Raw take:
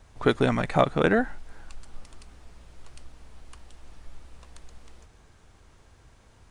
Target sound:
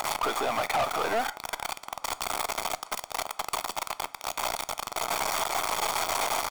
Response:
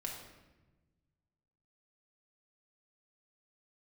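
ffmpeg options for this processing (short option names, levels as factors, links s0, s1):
-filter_complex "[0:a]aeval=exprs='val(0)+0.5*0.075*sgn(val(0))':c=same,aecho=1:1:0.9:0.64,acompressor=threshold=0.0708:ratio=6,highpass=f=630:t=q:w=4.5,aeval=exprs='0.376*(cos(1*acos(clip(val(0)/0.376,-1,1)))-cos(1*PI/2))+0.0335*(cos(6*acos(clip(val(0)/0.376,-1,1)))-cos(6*PI/2))':c=same,volume=18.8,asoftclip=hard,volume=0.0531,asplit=2[s0][s1];[1:a]atrim=start_sample=2205,afade=t=out:st=0.18:d=0.01,atrim=end_sample=8379,asetrate=79380,aresample=44100[s2];[s1][s2]afir=irnorm=-1:irlink=0,volume=0.473[s3];[s0][s3]amix=inputs=2:normalize=0,volume=1.19"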